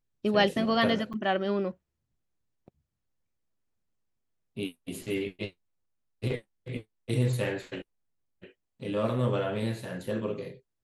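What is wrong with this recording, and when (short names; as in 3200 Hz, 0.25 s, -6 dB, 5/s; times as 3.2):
1.13–1.14 gap 7 ms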